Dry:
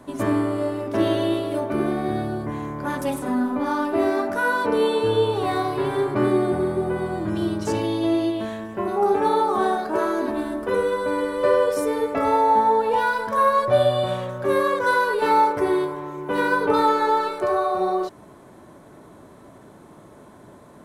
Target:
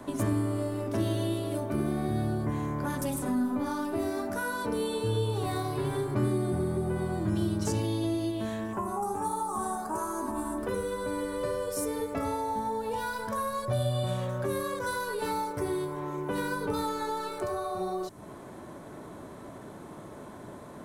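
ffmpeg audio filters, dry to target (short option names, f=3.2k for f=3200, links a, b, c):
-filter_complex "[0:a]asettb=1/sr,asplit=3[a][b][c];[a]atrim=end=8.734[d];[b]atrim=start=8.73:end=10.58,asetpts=PTS-STARTPTS,afade=t=in:d=0.004:c=qsin,afade=t=out:st=1.846:d=0.004:c=qsin,equalizer=f=125:t=o:w=1:g=-4,equalizer=f=500:t=o:w=1:g=-8,equalizer=f=1k:t=o:w=1:g=11,equalizer=f=2k:t=o:w=1:g=-7,equalizer=f=4k:t=o:w=1:g=-11,equalizer=f=8k:t=o:w=1:g=10[e];[c]atrim=start=10.576[f];[d][e]acrossfade=d=0.004:c1=hsin:c2=qsin[g];[g][f]acrossfade=d=0.004:c1=qsin:c2=hsin,acrossover=split=190|5300[h][i][j];[i]acompressor=threshold=-35dB:ratio=5[k];[h][k][j]amix=inputs=3:normalize=0,volume=2dB"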